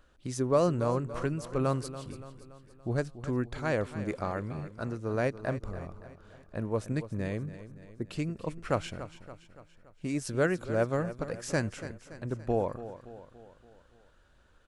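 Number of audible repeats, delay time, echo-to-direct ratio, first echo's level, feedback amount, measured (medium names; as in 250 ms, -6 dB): 4, 285 ms, -12.0 dB, -13.5 dB, 52%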